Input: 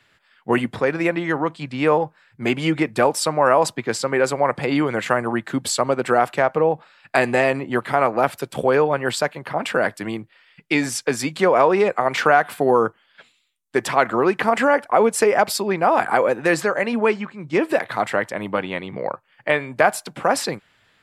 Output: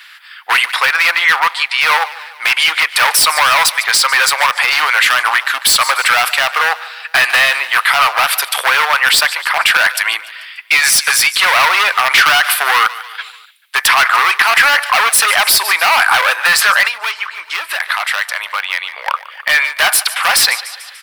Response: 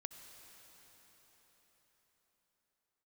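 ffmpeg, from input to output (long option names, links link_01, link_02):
-filter_complex "[0:a]volume=17dB,asoftclip=hard,volume=-17dB,highshelf=frequency=3900:gain=8.5,aecho=1:1:146|292|438|584:0.106|0.0561|0.0298|0.0158,asettb=1/sr,asplit=3[link_01][link_02][link_03];[link_01]atrim=end=16.874[link_04];[link_02]atrim=start=16.87:end=19.07,asetpts=PTS-STARTPTS,afade=type=in:duration=0.004:curve=qsin,afade=type=out:start_time=2.196:duration=0.004:curve=qsin,acompressor=threshold=-31dB:ratio=4[link_05];[link_03]atrim=start=19.066[link_06];[link_04][link_05]acrossfade=duration=0.004:curve1=hsin:curve2=qsin[link_07];[link_07][link_06]acrossfade=duration=0.004:curve1=qsin:curve2=hsin,highpass=frequency=1100:width=0.5412,highpass=frequency=1100:width=1.3066,asoftclip=type=tanh:threshold=-18.5dB,equalizer=frequency=7200:width_type=o:width=0.54:gain=-11,alimiter=level_in=21.5dB:limit=-1dB:release=50:level=0:latency=1,volume=-1dB"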